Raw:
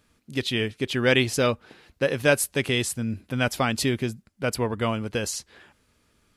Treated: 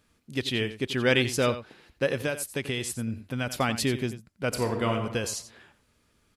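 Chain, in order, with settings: 2.21–3.52 s: compression 6:1, threshold -24 dBFS, peak gain reduction 10 dB; delay 88 ms -13 dB; 4.48–4.93 s: reverb throw, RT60 1 s, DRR 3 dB; trim -2.5 dB

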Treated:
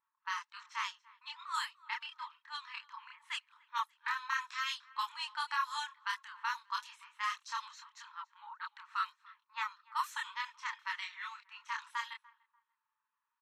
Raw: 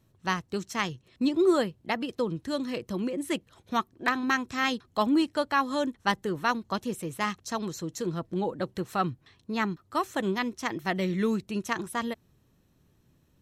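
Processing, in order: brick-wall FIR high-pass 860 Hz; peak limiter -21 dBFS, peak gain reduction 9.5 dB; chorus voices 2, 0.81 Hz, delay 28 ms, depth 2.4 ms; on a send: feedback delay 293 ms, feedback 31%, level -22.5 dB; on the sum: level-controlled noise filter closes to 1.1 kHz, open at -33 dBFS; trim +1 dB

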